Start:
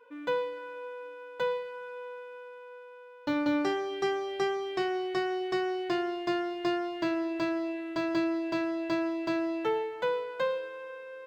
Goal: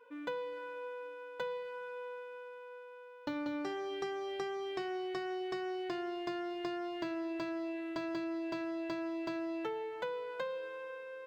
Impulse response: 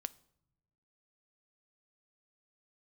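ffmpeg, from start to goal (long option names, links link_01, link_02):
-af "acompressor=threshold=-33dB:ratio=6,volume=-2.5dB"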